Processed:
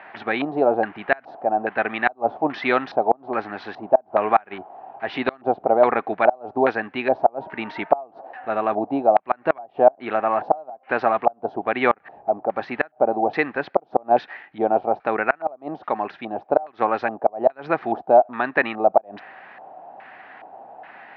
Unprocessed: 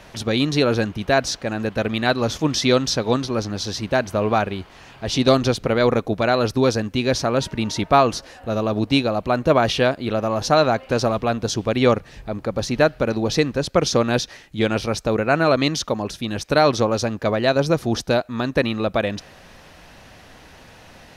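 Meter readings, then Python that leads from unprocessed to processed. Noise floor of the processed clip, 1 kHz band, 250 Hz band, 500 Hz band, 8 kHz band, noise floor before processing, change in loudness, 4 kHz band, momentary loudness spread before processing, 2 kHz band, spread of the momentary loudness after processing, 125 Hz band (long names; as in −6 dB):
−56 dBFS, +3.0 dB, −7.5 dB, −1.0 dB, below −35 dB, −46 dBFS, −1.5 dB, −16.5 dB, 8 LU, −0.5 dB, 13 LU, −19.0 dB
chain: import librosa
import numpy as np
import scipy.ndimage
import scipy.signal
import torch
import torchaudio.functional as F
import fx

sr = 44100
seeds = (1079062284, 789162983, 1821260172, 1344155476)

y = fx.filter_lfo_lowpass(x, sr, shape='square', hz=1.2, low_hz=710.0, high_hz=1900.0, q=2.9)
y = fx.cabinet(y, sr, low_hz=370.0, low_slope=12, high_hz=4000.0, hz=(510.0, 780.0, 2000.0, 3400.0), db=(-7, 9, -3, -3))
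y = fx.gate_flip(y, sr, shuts_db=-3.0, range_db=-29)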